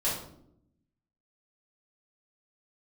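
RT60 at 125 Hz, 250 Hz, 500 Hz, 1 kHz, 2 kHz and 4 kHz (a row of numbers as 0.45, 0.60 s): 1.2, 1.2, 0.85, 0.60, 0.45, 0.45 s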